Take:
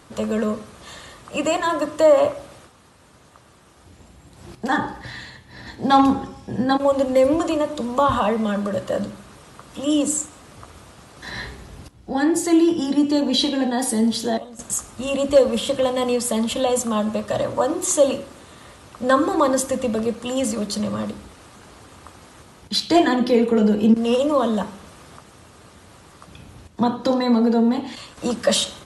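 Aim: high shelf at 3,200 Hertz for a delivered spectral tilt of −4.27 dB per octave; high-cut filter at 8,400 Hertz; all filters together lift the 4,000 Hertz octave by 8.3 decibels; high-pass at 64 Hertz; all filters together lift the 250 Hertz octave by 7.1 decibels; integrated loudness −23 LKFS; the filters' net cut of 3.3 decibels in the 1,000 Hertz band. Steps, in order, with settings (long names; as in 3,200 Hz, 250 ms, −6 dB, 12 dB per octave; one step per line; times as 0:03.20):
high-pass filter 64 Hz
low-pass filter 8,400 Hz
parametric band 250 Hz +8.5 dB
parametric band 1,000 Hz −5.5 dB
high-shelf EQ 3,200 Hz +3 dB
parametric band 4,000 Hz +8 dB
level −7 dB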